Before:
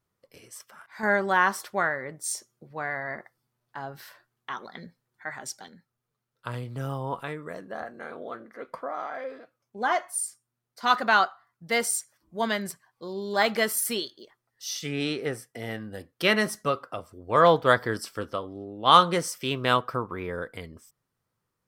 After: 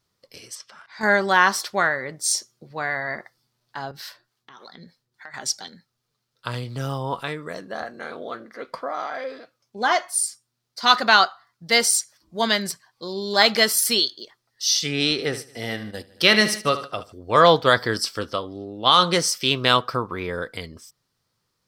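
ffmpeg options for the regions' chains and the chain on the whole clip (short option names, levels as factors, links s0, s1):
-filter_complex "[0:a]asettb=1/sr,asplit=3[s0][s1][s2];[s0]atrim=end=0.554[s3];[s1]atrim=start=0.55:end=1.01,asetpts=PTS-STARTPTS,afade=t=in:d=0.004:c=qsin,afade=t=out:st=0.456:d=0.004:c=qsin,lowpass=5900,acompressor=threshold=0.00251:ratio=1.5:attack=3.2:release=140:knee=1:detection=peak[s4];[s2]atrim=start=1.006[s5];[s3][s4]acrossfade=d=0.004:c1=hsin:c2=qsin[s6];[s6][s5]acrossfade=d=0.004:c1=qsin:c2=hsin,asettb=1/sr,asplit=3[s7][s8][s9];[s7]atrim=end=3.914[s10];[s8]atrim=start=3.91:end=5.34,asetpts=PTS-STARTPTS,afade=t=in:d=0.004:c=qsin,afade=t=out:st=1.426:d=0.004:c=qsin,acompressor=threshold=0.00794:ratio=4:attack=3.2:release=140:knee=1:detection=peak,acrossover=split=440[s11][s12];[s11]aeval=exprs='val(0)*(1-0.7/2+0.7/2*cos(2*PI*3.4*n/s))':c=same[s13];[s12]aeval=exprs='val(0)*(1-0.7/2-0.7/2*cos(2*PI*3.4*n/s))':c=same[s14];[s13][s14]amix=inputs=2:normalize=0[s15];[s9]atrim=start=5.336[s16];[s10][s15]acrossfade=d=0.004:c1=hsin:c2=qsin[s17];[s17][s16]acrossfade=d=0.004:c1=qsin:c2=hsin,asettb=1/sr,asplit=3[s18][s19][s20];[s18]atrim=end=15.114[s21];[s19]atrim=start=15.11:end=17.12,asetpts=PTS-STARTPTS,afade=t=in:d=0.004:c=qsin,afade=t=out:st=2.006:d=0.004:c=qsin,aecho=1:1:75|150|225|300|375:0.224|0.112|0.056|0.028|0.014,atrim=end_sample=88641,agate=range=0.398:threshold=0.00891:ratio=16:release=100:detection=peak,acompressor=mode=upward:threshold=0.00501:ratio=2.5:attack=3.2:release=140:knee=2.83:detection=peak[s22];[s20]atrim=start=17.116[s23];[s21][s22]acrossfade=d=0.004:c1=hsin:c2=qsin[s24];[s24][s23]acrossfade=d=0.004:c1=qsin:c2=hsin,equalizer=f=4600:t=o:w=1.2:g=12,alimiter=level_in=1.78:limit=0.891:release=50:level=0:latency=1,volume=0.891"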